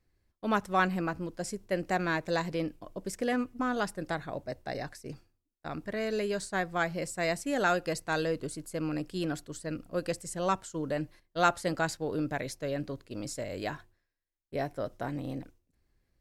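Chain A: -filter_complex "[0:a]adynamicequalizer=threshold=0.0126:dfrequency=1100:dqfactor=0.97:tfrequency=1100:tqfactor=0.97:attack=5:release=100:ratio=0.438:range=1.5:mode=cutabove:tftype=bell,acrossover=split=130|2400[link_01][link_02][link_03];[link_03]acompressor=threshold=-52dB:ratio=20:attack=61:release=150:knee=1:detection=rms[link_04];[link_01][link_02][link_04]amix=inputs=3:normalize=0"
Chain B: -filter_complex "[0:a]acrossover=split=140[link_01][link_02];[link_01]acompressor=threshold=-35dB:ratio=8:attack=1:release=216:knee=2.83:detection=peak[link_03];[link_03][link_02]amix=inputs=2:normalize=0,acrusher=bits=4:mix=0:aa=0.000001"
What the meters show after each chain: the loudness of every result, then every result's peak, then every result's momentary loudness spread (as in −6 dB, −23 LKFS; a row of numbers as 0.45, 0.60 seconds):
−33.5, −32.0 LKFS; −11.5, −9.5 dBFS; 11, 11 LU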